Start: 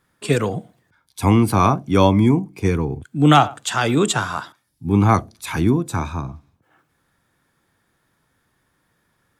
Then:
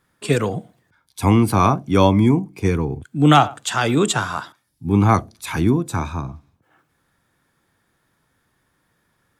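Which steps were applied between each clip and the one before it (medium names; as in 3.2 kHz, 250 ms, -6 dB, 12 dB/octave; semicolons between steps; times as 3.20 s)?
no audible change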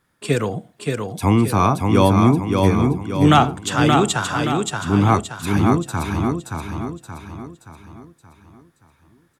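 feedback delay 575 ms, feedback 46%, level -4 dB; trim -1 dB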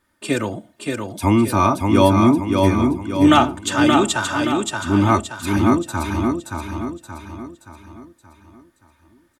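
comb 3.3 ms, depth 70%; trim -1 dB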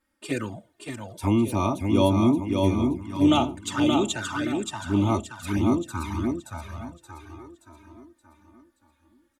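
touch-sensitive flanger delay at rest 3.7 ms, full sweep at -14 dBFS; trim -5.5 dB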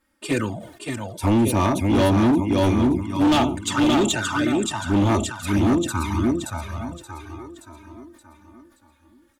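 hard clipper -20.5 dBFS, distortion -10 dB; decay stretcher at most 84 dB/s; trim +6 dB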